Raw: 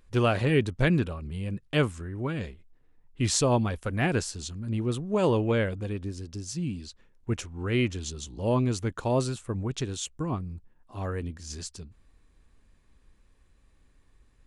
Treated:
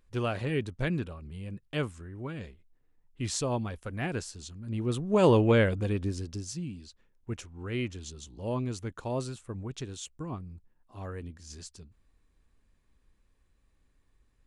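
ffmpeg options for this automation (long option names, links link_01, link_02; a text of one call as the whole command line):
ffmpeg -i in.wav -af "volume=3dB,afade=type=in:start_time=4.61:duration=0.68:silence=0.316228,afade=type=out:start_time=6.14:duration=0.54:silence=0.316228" out.wav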